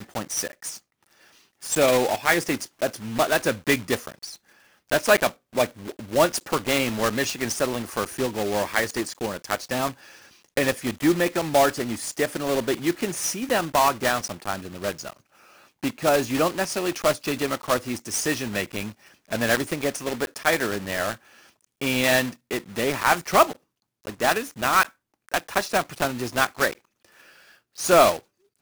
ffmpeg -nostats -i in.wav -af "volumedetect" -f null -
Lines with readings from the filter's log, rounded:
mean_volume: -25.2 dB
max_volume: -7.1 dB